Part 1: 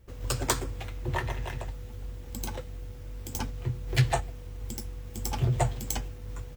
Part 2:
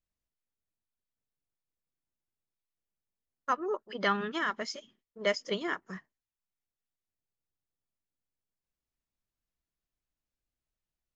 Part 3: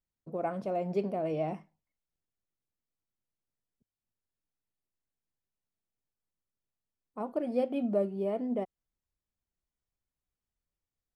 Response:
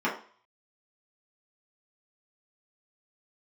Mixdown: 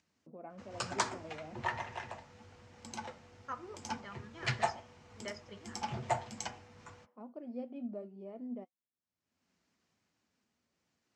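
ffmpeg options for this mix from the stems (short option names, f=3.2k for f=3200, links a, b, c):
-filter_complex "[0:a]lowshelf=f=540:t=q:w=1.5:g=-6.5,adelay=500,volume=-0.5dB,asplit=2[a][b];[b]volume=-18.5dB[c];[1:a]tremolo=f=0.61:d=0.73,volume=-7.5dB,asplit=2[d][e];[e]volume=-20.5dB[f];[2:a]volume=-11.5dB[g];[3:a]atrim=start_sample=2205[h];[c][f]amix=inputs=2:normalize=0[i];[i][h]afir=irnorm=-1:irlink=0[j];[a][d][g][j]amix=inputs=4:normalize=0,acompressor=mode=upward:threshold=-48dB:ratio=2.5,flanger=delay=1:depth=4.2:regen=-74:speed=1.1:shape=triangular,highpass=f=100:w=0.5412,highpass=f=100:w=1.3066,equalizer=f=130:t=q:w=4:g=-5,equalizer=f=240:t=q:w=4:g=8,equalizer=f=3.5k:t=q:w=4:g=-4,lowpass=f=6.8k:w=0.5412,lowpass=f=6.8k:w=1.3066"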